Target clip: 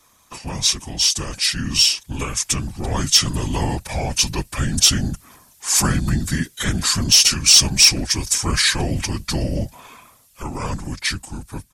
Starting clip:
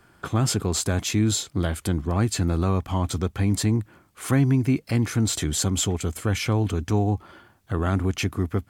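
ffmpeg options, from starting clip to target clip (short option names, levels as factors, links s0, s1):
-af "dynaudnorm=f=360:g=9:m=2.99,crystalizer=i=7.5:c=0,afftfilt=real='hypot(re,im)*cos(2*PI*random(0))':imag='hypot(re,im)*sin(2*PI*random(1))':win_size=512:overlap=0.75,asoftclip=type=tanh:threshold=0.891,asetrate=32667,aresample=44100,volume=0.794"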